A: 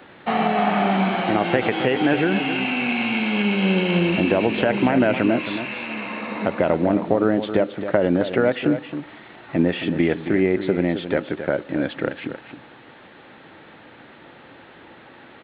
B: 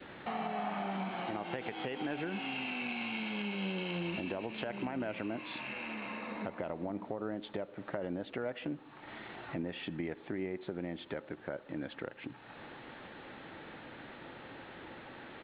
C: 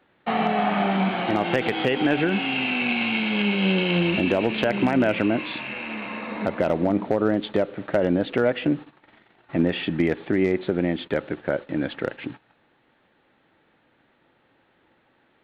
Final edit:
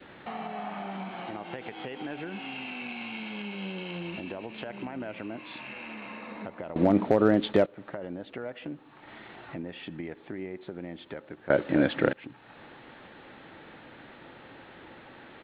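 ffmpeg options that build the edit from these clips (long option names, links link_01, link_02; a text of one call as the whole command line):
ffmpeg -i take0.wav -i take1.wav -i take2.wav -filter_complex "[1:a]asplit=3[link_01][link_02][link_03];[link_01]atrim=end=6.762[link_04];[2:a]atrim=start=6.758:end=7.662[link_05];[link_02]atrim=start=7.658:end=11.502[link_06];[0:a]atrim=start=11.498:end=12.132[link_07];[link_03]atrim=start=12.128[link_08];[link_04][link_05]acrossfade=duration=0.004:curve1=hsin:curve2=hsin[link_09];[link_09][link_06]acrossfade=duration=0.004:curve1=hsin:curve2=hsin[link_10];[link_10][link_07]acrossfade=duration=0.004:curve1=hsin:curve2=hsin[link_11];[link_11][link_08]acrossfade=duration=0.004:curve1=hsin:curve2=hsin" out.wav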